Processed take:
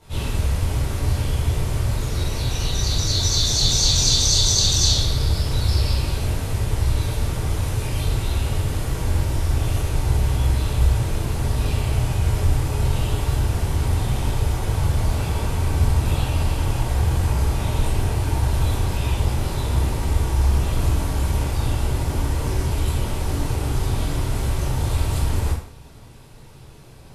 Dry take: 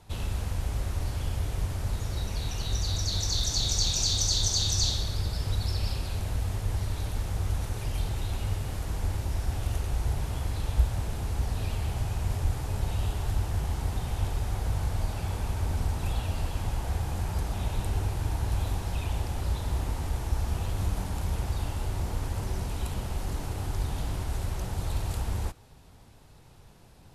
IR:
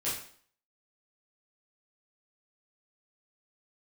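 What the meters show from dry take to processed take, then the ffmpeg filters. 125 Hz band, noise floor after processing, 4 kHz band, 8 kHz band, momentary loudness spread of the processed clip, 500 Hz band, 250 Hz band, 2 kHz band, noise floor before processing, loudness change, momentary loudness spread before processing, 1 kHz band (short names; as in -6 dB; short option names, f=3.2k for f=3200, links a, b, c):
+9.0 dB, -42 dBFS, +9.0 dB, +9.0 dB, 8 LU, +10.0 dB, +10.0 dB, +9.5 dB, -52 dBFS, +9.0 dB, 7 LU, +8.0 dB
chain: -filter_complex "[1:a]atrim=start_sample=2205,asetrate=43659,aresample=44100[a];[0:a][a]afir=irnorm=-1:irlink=0,volume=4dB"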